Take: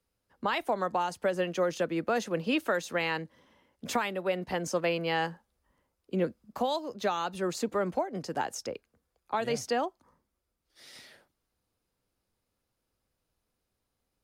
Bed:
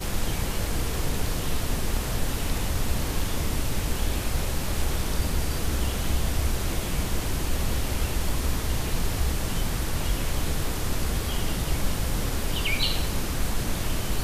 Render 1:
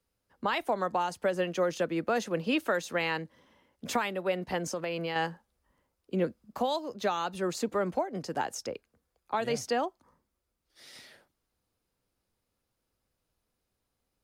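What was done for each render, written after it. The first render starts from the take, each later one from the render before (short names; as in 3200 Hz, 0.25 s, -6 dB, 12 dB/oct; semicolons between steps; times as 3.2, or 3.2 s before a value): 4.67–5.16 compressor, threshold -29 dBFS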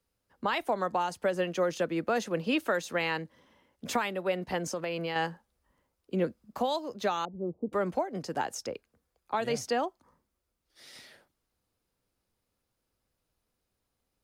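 7.25–7.73 Gaussian blur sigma 15 samples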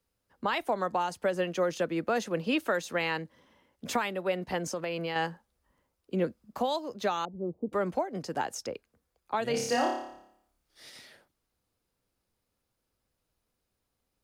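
9.51–10.9 flutter echo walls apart 4.9 m, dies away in 0.72 s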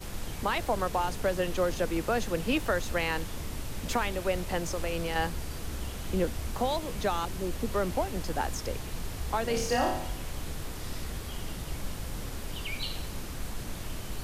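add bed -10 dB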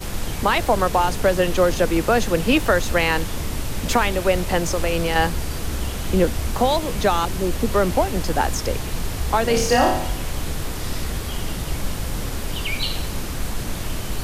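gain +10.5 dB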